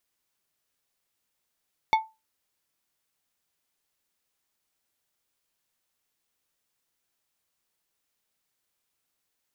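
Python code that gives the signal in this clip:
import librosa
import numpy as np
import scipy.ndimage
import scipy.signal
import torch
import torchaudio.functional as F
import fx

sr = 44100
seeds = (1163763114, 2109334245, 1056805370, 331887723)

y = fx.strike_glass(sr, length_s=0.89, level_db=-14, body='plate', hz=882.0, decay_s=0.24, tilt_db=7, modes=5)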